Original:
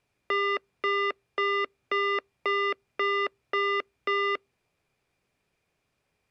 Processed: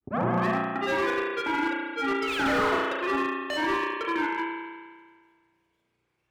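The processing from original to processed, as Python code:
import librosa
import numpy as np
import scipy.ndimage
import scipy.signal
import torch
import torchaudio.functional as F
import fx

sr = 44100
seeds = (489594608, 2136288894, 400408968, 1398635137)

y = fx.tape_start_head(x, sr, length_s=0.57)
y = fx.rider(y, sr, range_db=10, speed_s=0.5)
y = fx.notch_comb(y, sr, f0_hz=650.0)
y = fx.spec_paint(y, sr, seeds[0], shape='fall', start_s=2.27, length_s=0.45, low_hz=660.0, high_hz=5300.0, level_db=-28.0)
y = fx.granulator(y, sr, seeds[1], grain_ms=100.0, per_s=20.0, spray_ms=100.0, spread_st=7)
y = fx.rev_spring(y, sr, rt60_s=1.6, pass_ms=(33,), chirp_ms=55, drr_db=-2.5)
y = fx.slew_limit(y, sr, full_power_hz=88.0)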